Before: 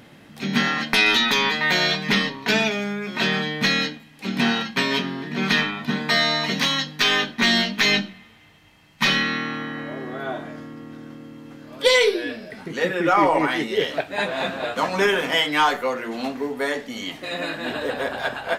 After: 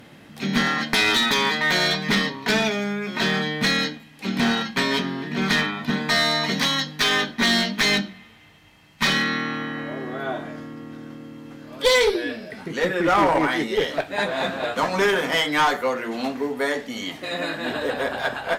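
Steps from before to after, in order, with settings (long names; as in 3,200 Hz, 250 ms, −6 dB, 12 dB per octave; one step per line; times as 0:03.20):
dynamic equaliser 2,700 Hz, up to −7 dB, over −40 dBFS, Q 4.9
asymmetric clip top −18.5 dBFS
level +1 dB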